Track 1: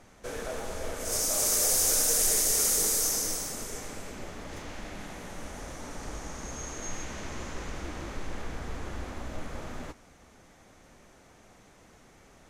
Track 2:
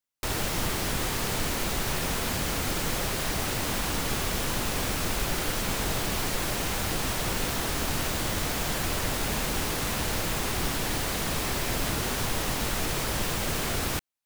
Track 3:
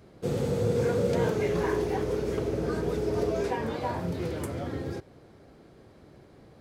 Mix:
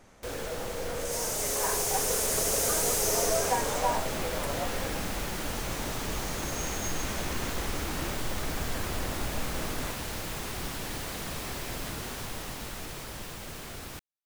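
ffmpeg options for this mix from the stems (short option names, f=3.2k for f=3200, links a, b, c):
-filter_complex "[0:a]asoftclip=type=tanh:threshold=-29.5dB,volume=-1dB[a];[1:a]volume=-12dB[b];[2:a]highpass=f=540:w=0.5412,highpass=f=540:w=1.3066,equalizer=f=690:w=0.56:g=7,volume=-6dB,afade=t=in:st=1.38:d=0.24:silence=0.473151[c];[a][b][c]amix=inputs=3:normalize=0,dynaudnorm=f=200:g=21:m=5dB"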